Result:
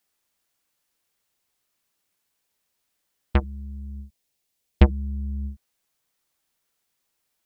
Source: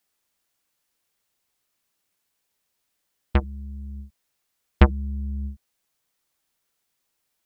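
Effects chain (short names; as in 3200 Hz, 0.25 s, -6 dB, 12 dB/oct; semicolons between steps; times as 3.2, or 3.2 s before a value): 3.8–5.52 bell 1300 Hz -9.5 dB 1.1 oct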